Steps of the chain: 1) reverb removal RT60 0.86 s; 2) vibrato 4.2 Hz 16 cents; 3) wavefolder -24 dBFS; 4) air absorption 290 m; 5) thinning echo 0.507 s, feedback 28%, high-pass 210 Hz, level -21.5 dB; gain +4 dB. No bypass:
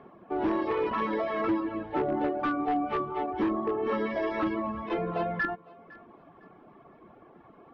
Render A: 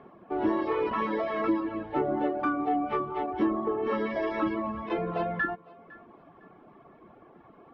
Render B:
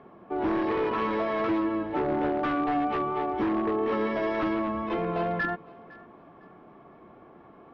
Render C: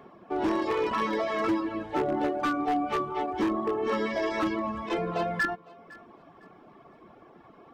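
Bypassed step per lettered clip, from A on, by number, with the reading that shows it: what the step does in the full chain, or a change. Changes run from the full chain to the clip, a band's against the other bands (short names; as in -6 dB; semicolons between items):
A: 3, distortion -15 dB; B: 1, crest factor change -2.0 dB; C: 4, 4 kHz band +6.0 dB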